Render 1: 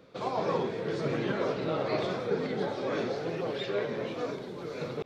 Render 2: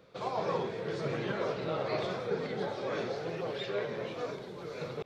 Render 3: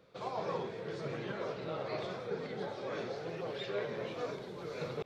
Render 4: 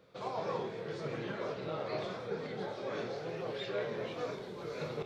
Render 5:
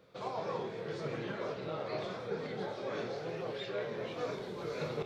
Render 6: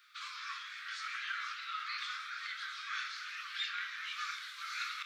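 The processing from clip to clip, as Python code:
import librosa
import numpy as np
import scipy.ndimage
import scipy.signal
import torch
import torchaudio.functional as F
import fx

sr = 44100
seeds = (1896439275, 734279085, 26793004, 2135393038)

y1 = fx.peak_eq(x, sr, hz=270.0, db=-6.5, octaves=0.66)
y1 = y1 * 10.0 ** (-2.0 / 20.0)
y2 = fx.rider(y1, sr, range_db=10, speed_s=2.0)
y2 = y2 * 10.0 ** (-4.5 / 20.0)
y3 = fx.doubler(y2, sr, ms=26.0, db=-8.5)
y4 = fx.rider(y3, sr, range_db=10, speed_s=0.5)
y5 = scipy.signal.sosfilt(scipy.signal.butter(16, 1200.0, 'highpass', fs=sr, output='sos'), y4)
y5 = y5 * 10.0 ** (8.0 / 20.0)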